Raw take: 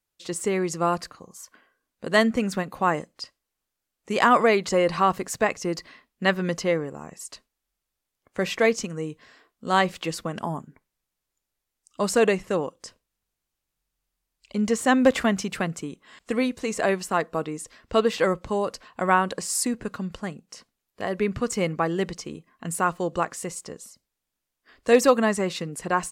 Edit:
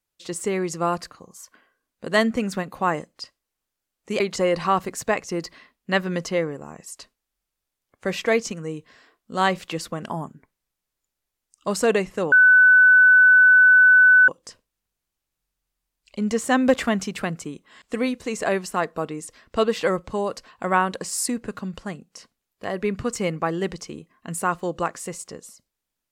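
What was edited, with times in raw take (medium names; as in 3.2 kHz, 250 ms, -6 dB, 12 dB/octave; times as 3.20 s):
4.20–4.53 s: delete
12.65 s: add tone 1.5 kHz -9.5 dBFS 1.96 s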